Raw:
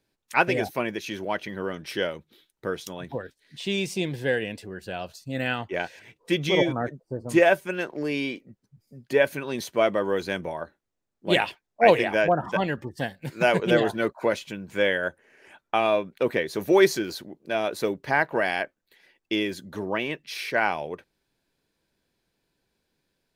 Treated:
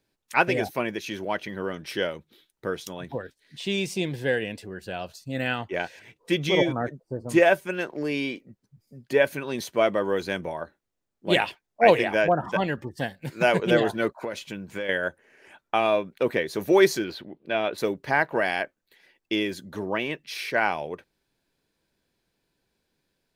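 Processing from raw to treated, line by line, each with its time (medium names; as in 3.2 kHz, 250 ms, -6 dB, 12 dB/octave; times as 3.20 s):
14.18–14.89 s: compression, threshold -27 dBFS
17.04–17.78 s: resonant high shelf 4.7 kHz -12.5 dB, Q 1.5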